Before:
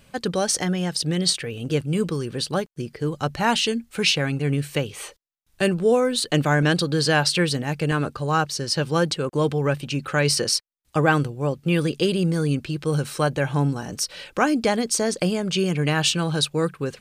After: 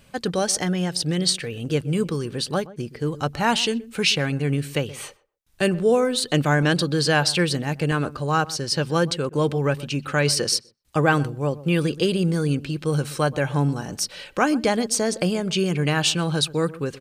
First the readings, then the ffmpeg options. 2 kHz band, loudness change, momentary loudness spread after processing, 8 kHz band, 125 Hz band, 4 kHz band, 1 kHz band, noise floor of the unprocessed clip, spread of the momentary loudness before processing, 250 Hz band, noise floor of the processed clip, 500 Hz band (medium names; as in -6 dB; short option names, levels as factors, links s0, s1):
0.0 dB, 0.0 dB, 7 LU, 0.0 dB, 0.0 dB, 0.0 dB, 0.0 dB, -62 dBFS, 7 LU, 0.0 dB, -53 dBFS, 0.0 dB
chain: -filter_complex "[0:a]asplit=2[s0][s1];[s1]adelay=125,lowpass=f=940:p=1,volume=0.141,asplit=2[s2][s3];[s3]adelay=125,lowpass=f=940:p=1,volume=0.17[s4];[s0][s2][s4]amix=inputs=3:normalize=0"